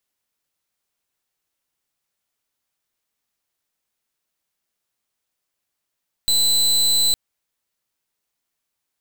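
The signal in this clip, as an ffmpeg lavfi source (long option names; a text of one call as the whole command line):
ffmpeg -f lavfi -i "aevalsrc='0.141*(2*lt(mod(4020*t,1),0.28)-1)':duration=0.86:sample_rate=44100" out.wav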